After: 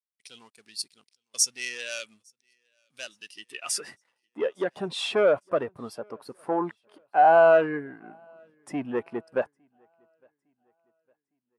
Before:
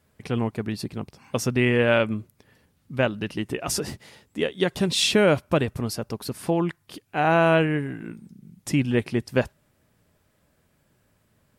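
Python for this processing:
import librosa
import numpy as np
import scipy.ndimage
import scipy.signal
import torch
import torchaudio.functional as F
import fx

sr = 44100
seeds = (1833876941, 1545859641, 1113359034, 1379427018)

y = fx.leveller(x, sr, passes=3)
y = fx.peak_eq(y, sr, hz=10000.0, db=11.5, octaves=0.86)
y = fx.filter_sweep_bandpass(y, sr, from_hz=5000.0, to_hz=1000.0, start_s=3.3, end_s=4.14, q=1.1)
y = fx.high_shelf(y, sr, hz=5700.0, db=5.0)
y = fx.echo_feedback(y, sr, ms=858, feedback_pct=54, wet_db=-23.0)
y = fx.spectral_expand(y, sr, expansion=1.5)
y = y * 10.0 ** (-5.5 / 20.0)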